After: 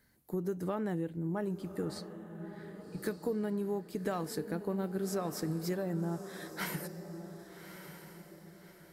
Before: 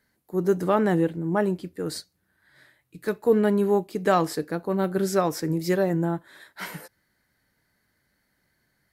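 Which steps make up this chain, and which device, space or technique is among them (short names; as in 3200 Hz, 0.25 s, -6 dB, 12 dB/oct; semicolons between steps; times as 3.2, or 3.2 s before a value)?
ASMR close-microphone chain (low shelf 240 Hz +7 dB; compressor 5:1, threshold -32 dBFS, peak gain reduction 17.5 dB; high shelf 8000 Hz +6.5 dB); 1.85–2.98 LPF 2500 Hz 6 dB/oct; diffused feedback echo 1.188 s, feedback 41%, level -10.5 dB; gain -1.5 dB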